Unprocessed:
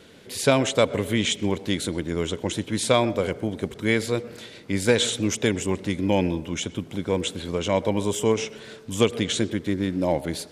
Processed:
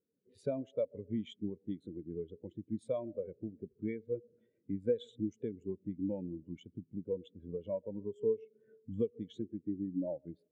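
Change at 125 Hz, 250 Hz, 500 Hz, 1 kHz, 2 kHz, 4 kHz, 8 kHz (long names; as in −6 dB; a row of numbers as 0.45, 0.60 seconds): −17.5 dB, −13.5 dB, −13.0 dB, −27.5 dB, −33.0 dB, −31.0 dB, below −40 dB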